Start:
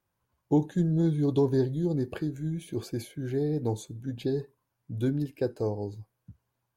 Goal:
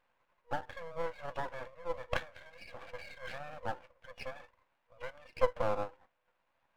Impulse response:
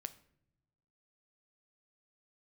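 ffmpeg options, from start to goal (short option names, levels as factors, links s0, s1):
-filter_complex "[0:a]asplit=2[s0][s1];[s1]acompressor=threshold=0.0251:ratio=16,volume=1.26[s2];[s0][s2]amix=inputs=2:normalize=0,afftfilt=real='re*between(b*sr/4096,480,2900)':imag='im*between(b*sr/4096,480,2900)':win_size=4096:overlap=0.75,aeval=exprs='max(val(0),0)':c=same,tremolo=f=0.87:d=0.36,volume=2.11"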